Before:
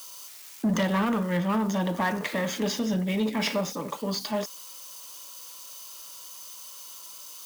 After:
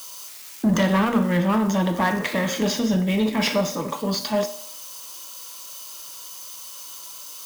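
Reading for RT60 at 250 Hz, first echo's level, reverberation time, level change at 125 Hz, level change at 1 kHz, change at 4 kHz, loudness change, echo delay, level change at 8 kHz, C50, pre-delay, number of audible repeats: 0.60 s, no echo, 0.60 s, +6.0 dB, +5.0 dB, +5.0 dB, +5.5 dB, no echo, +5.0 dB, 12.5 dB, 4 ms, no echo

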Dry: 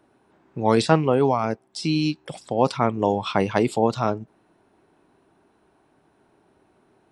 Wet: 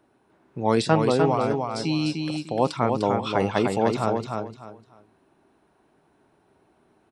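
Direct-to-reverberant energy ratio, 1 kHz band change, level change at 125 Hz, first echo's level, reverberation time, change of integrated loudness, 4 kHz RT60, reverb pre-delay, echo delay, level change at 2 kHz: no reverb, -1.0 dB, -1.0 dB, -4.5 dB, no reverb, -1.5 dB, no reverb, no reverb, 300 ms, -1.0 dB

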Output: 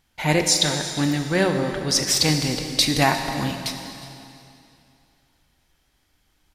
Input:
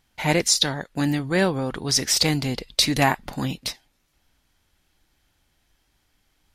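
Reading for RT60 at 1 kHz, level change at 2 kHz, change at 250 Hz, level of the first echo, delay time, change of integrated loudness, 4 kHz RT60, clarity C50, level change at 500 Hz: 2.7 s, +1.0 dB, +1.0 dB, -18.5 dB, 356 ms, +1.5 dB, 2.5 s, 6.0 dB, +1.5 dB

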